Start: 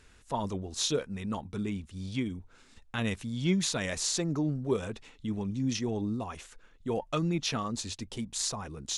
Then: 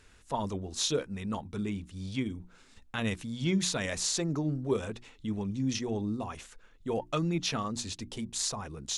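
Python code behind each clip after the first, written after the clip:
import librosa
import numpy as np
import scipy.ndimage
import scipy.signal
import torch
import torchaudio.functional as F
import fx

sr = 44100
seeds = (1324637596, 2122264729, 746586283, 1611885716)

y = fx.hum_notches(x, sr, base_hz=60, count=6)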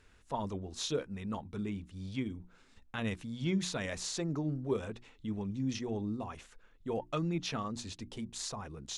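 y = fx.high_shelf(x, sr, hz=4700.0, db=-7.5)
y = F.gain(torch.from_numpy(y), -3.5).numpy()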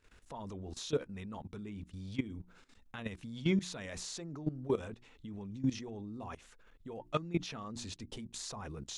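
y = fx.level_steps(x, sr, step_db=16)
y = F.gain(torch.from_numpy(y), 4.5).numpy()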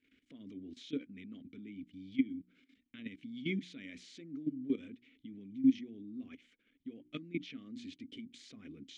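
y = fx.vowel_filter(x, sr, vowel='i')
y = F.gain(torch.from_numpy(y), 8.0).numpy()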